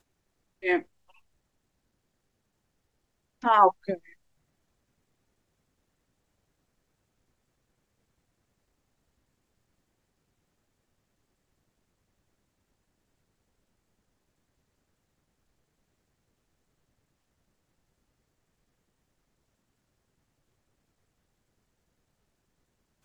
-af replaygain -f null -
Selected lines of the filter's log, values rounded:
track_gain = +57.9 dB
track_peak = 0.396